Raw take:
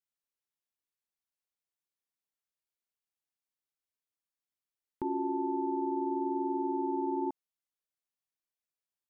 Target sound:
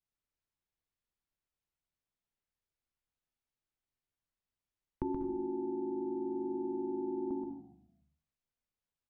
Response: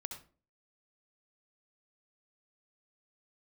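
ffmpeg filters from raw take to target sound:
-filter_complex "[0:a]aemphasis=mode=reproduction:type=bsi,bandreject=frequency=70.11:width_type=h:width=4,bandreject=frequency=140.22:width_type=h:width=4,bandreject=frequency=210.33:width_type=h:width=4,bandreject=frequency=280.44:width_type=h:width=4,bandreject=frequency=350.55:width_type=h:width=4,bandreject=frequency=420.66:width_type=h:width=4,bandreject=frequency=490.77:width_type=h:width=4,bandreject=frequency=560.88:width_type=h:width=4,bandreject=frequency=630.99:width_type=h:width=4,bandreject=frequency=701.1:width_type=h:width=4,bandreject=frequency=771.21:width_type=h:width=4,bandreject=frequency=841.32:width_type=h:width=4,bandreject=frequency=911.43:width_type=h:width=4,bandreject=frequency=981.54:width_type=h:width=4,bandreject=frequency=1051.65:width_type=h:width=4,bandreject=frequency=1121.76:width_type=h:width=4,bandreject=frequency=1191.87:width_type=h:width=4,bandreject=frequency=1261.98:width_type=h:width=4,bandreject=frequency=1332.09:width_type=h:width=4,bandreject=frequency=1402.2:width_type=h:width=4,bandreject=frequency=1472.31:width_type=h:width=4,bandreject=frequency=1542.42:width_type=h:width=4,bandreject=frequency=1612.53:width_type=h:width=4,bandreject=frequency=1682.64:width_type=h:width=4,bandreject=frequency=1752.75:width_type=h:width=4,bandreject=frequency=1822.86:width_type=h:width=4,bandreject=frequency=1892.97:width_type=h:width=4,acrossover=split=370|970[link_01][link_02][link_03];[link_01]acompressor=threshold=-31dB:ratio=4[link_04];[link_02]acompressor=threshold=-45dB:ratio=4[link_05];[link_03]acompressor=threshold=-53dB:ratio=4[link_06];[link_04][link_05][link_06]amix=inputs=3:normalize=0,asplit=5[link_07][link_08][link_09][link_10][link_11];[link_08]adelay=143,afreqshift=-51,volume=-18dB[link_12];[link_09]adelay=286,afreqshift=-102,volume=-25.1dB[link_13];[link_10]adelay=429,afreqshift=-153,volume=-32.3dB[link_14];[link_11]adelay=572,afreqshift=-204,volume=-39.4dB[link_15];[link_07][link_12][link_13][link_14][link_15]amix=inputs=5:normalize=0,asplit=2[link_16][link_17];[1:a]atrim=start_sample=2205,adelay=128[link_18];[link_17][link_18]afir=irnorm=-1:irlink=0,volume=-2.5dB[link_19];[link_16][link_19]amix=inputs=2:normalize=0"

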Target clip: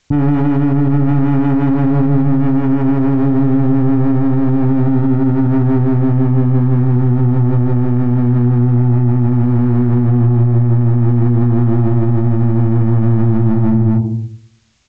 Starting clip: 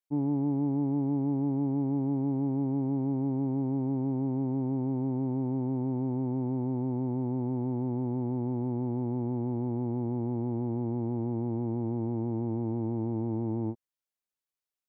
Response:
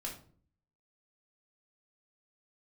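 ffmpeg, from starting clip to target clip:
-filter_complex "[0:a]crystalizer=i=5:c=0,asplit=2[link_01][link_02];[1:a]atrim=start_sample=2205,adelay=109[link_03];[link_02][link_03]afir=irnorm=-1:irlink=0,volume=-14.5dB[link_04];[link_01][link_04]amix=inputs=2:normalize=0,asoftclip=type=hard:threshold=-33.5dB,equalizer=frequency=78:width_type=o:width=0.63:gain=12.5,asplit=2[link_05][link_06];[link_06]adelay=41,volume=-5.5dB[link_07];[link_05][link_07]amix=inputs=2:normalize=0,aecho=1:1:236:0.316,acompressor=threshold=-46dB:ratio=10,bass=frequency=250:gain=13,treble=frequency=4000:gain=-12,alimiter=level_in=34.5dB:limit=-1dB:release=50:level=0:latency=1,volume=-4dB" -ar 16000 -c:a g722

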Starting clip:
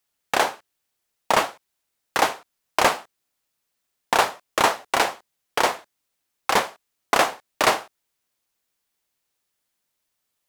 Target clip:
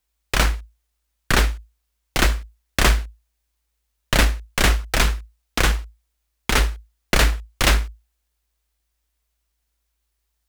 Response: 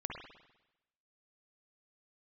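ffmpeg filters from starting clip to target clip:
-af "aeval=exprs='abs(val(0))':channel_layout=same,afreqshift=-55,volume=4dB"

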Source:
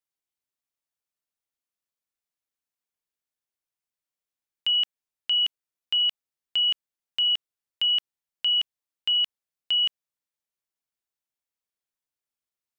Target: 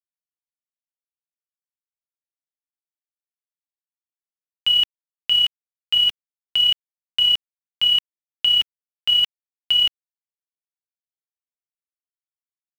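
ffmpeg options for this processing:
ffmpeg -i in.wav -filter_complex "[0:a]asettb=1/sr,asplit=3[link_01][link_02][link_03];[link_01]atrim=end=5.344[link_04];[link_02]atrim=start=5.34:end=5.99,asetpts=PTS-STARTPTS,afade=type=in:duration=0.004:curve=qsin,afade=type=out:start_time=0.646:duration=0.004:curve=qsin,lowshelf=frequency=440:gain=-10[link_05];[link_03]atrim=start=5.986[link_06];[link_04][link_05]acrossfade=duration=0.004:curve1=hsin:curve2=qsin[link_07];[link_07][link_06]acrossfade=duration=0.004:curve1=qsin:curve2=hsin,aphaser=in_gain=1:out_gain=1:delay=3:decay=0.32:speed=1.9:type=triangular,acontrast=36,aeval=exprs='val(0)+0.00447*(sin(2*PI*50*n/s)+sin(2*PI*2*50*n/s)/2+sin(2*PI*3*50*n/s)/3+sin(2*PI*4*50*n/s)/4+sin(2*PI*5*50*n/s)/5)':channel_layout=same,acrusher=bits=6:mix=0:aa=0.000001" out.wav

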